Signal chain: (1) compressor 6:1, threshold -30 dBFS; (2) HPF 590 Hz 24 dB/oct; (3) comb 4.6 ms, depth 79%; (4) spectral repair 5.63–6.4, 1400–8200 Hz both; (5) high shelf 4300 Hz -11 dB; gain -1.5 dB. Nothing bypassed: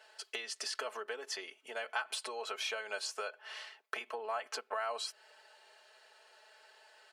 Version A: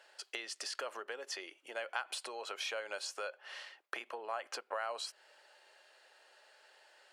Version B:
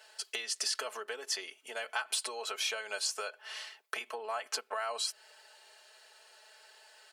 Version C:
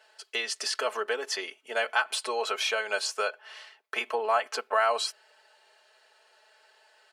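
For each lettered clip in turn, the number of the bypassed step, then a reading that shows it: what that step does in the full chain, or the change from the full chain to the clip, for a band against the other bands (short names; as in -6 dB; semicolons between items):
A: 3, 250 Hz band +3.0 dB; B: 5, 8 kHz band +7.5 dB; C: 1, mean gain reduction 8.0 dB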